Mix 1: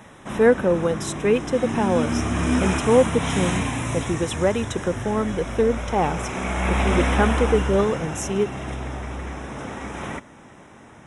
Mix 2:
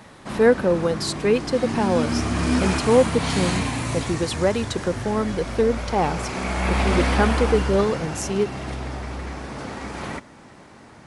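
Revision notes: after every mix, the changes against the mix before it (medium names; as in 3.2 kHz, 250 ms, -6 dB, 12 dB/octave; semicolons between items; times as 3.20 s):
master: remove Butterworth band-stop 4.5 kHz, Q 2.9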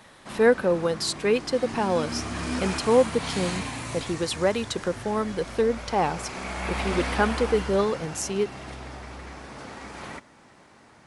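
background -5.0 dB; master: add bass shelf 470 Hz -5.5 dB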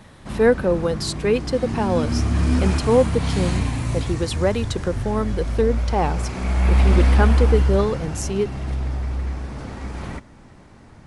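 background: remove high-pass 310 Hz 6 dB/octave; master: add bass shelf 470 Hz +5.5 dB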